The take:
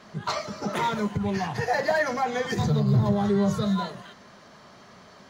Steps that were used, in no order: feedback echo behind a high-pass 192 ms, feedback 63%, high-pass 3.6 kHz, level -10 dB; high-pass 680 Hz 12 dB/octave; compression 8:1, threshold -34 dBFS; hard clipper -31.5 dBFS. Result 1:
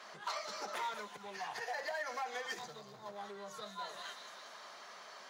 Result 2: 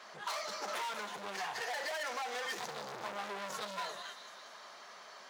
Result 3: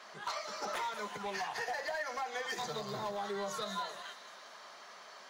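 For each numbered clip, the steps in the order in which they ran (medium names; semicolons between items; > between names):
feedback echo behind a high-pass > compression > hard clipper > high-pass; feedback echo behind a high-pass > hard clipper > high-pass > compression; high-pass > compression > feedback echo behind a high-pass > hard clipper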